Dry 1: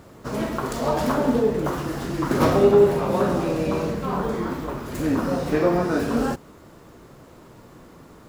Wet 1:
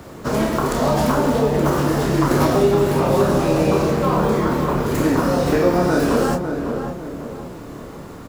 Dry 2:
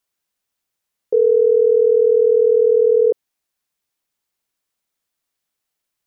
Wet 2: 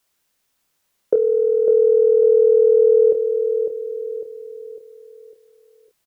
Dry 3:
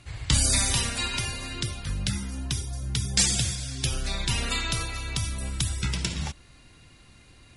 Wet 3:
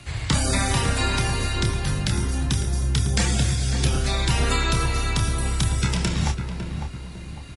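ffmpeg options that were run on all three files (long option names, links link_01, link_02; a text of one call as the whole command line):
ffmpeg -i in.wav -filter_complex "[0:a]acrossover=split=87|400|1800|4000[link_01][link_02][link_03][link_04][link_05];[link_01]acompressor=threshold=-40dB:ratio=4[link_06];[link_02]acompressor=threshold=-30dB:ratio=4[link_07];[link_03]acompressor=threshold=-29dB:ratio=4[link_08];[link_04]acompressor=threshold=-47dB:ratio=4[link_09];[link_05]acompressor=threshold=-41dB:ratio=4[link_10];[link_06][link_07][link_08][link_09][link_10]amix=inputs=5:normalize=0,asplit=2[link_11][link_12];[link_12]adelay=28,volume=-7dB[link_13];[link_11][link_13]amix=inputs=2:normalize=0,asplit=2[link_14][link_15];[link_15]adelay=552,lowpass=frequency=1300:poles=1,volume=-6dB,asplit=2[link_16][link_17];[link_17]adelay=552,lowpass=frequency=1300:poles=1,volume=0.45,asplit=2[link_18][link_19];[link_19]adelay=552,lowpass=frequency=1300:poles=1,volume=0.45,asplit=2[link_20][link_21];[link_21]adelay=552,lowpass=frequency=1300:poles=1,volume=0.45,asplit=2[link_22][link_23];[link_23]adelay=552,lowpass=frequency=1300:poles=1,volume=0.45[link_24];[link_14][link_16][link_18][link_20][link_22][link_24]amix=inputs=6:normalize=0,volume=8.5dB" out.wav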